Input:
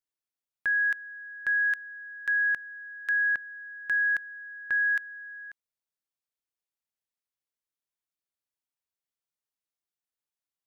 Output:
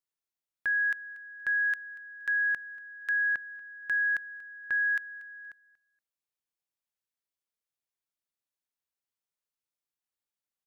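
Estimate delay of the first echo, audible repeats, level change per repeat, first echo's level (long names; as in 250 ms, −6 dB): 236 ms, 2, −13.0 dB, −20.0 dB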